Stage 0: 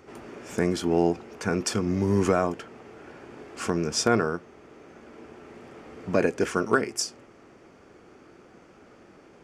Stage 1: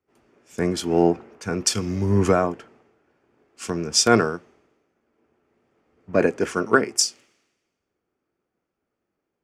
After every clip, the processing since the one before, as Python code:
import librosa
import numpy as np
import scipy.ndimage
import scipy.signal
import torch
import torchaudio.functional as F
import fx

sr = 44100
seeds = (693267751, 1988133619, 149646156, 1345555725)

y = fx.band_widen(x, sr, depth_pct=100)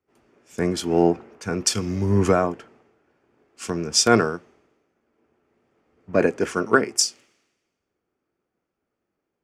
y = x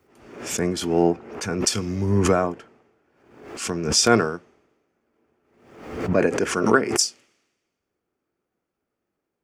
y = fx.pre_swell(x, sr, db_per_s=71.0)
y = y * 10.0 ** (-1.0 / 20.0)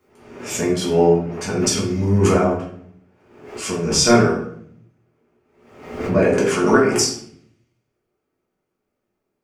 y = fx.room_shoebox(x, sr, seeds[0], volume_m3=100.0, walls='mixed', distance_m=1.4)
y = y * 10.0 ** (-3.0 / 20.0)